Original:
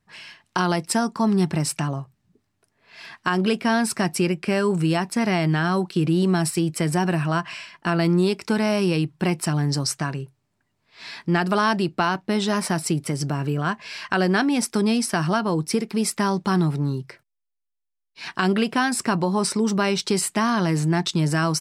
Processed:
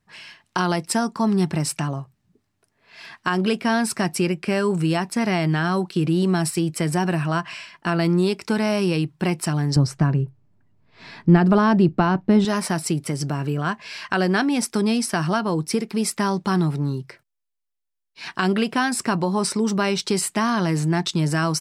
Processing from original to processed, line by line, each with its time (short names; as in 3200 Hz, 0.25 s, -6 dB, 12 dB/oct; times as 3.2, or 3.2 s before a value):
9.76–12.45 tilt -3.5 dB/oct